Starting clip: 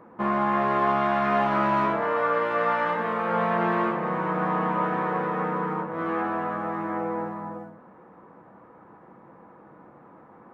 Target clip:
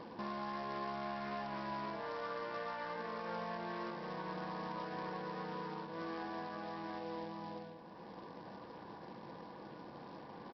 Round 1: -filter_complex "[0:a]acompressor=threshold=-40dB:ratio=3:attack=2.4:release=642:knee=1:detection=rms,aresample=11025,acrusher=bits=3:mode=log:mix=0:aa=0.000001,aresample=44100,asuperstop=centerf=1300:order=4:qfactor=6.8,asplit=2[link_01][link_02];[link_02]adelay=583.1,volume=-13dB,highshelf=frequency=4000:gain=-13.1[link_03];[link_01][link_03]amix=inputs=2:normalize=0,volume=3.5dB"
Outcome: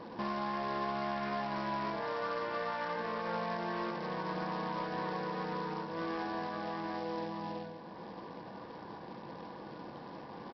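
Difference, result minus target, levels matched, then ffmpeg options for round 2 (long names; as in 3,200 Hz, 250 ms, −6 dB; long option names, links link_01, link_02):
downward compressor: peak gain reduction −5.5 dB
-filter_complex "[0:a]acompressor=threshold=-48.5dB:ratio=3:attack=2.4:release=642:knee=1:detection=rms,aresample=11025,acrusher=bits=3:mode=log:mix=0:aa=0.000001,aresample=44100,asuperstop=centerf=1300:order=4:qfactor=6.8,asplit=2[link_01][link_02];[link_02]adelay=583.1,volume=-13dB,highshelf=frequency=4000:gain=-13.1[link_03];[link_01][link_03]amix=inputs=2:normalize=0,volume=3.5dB"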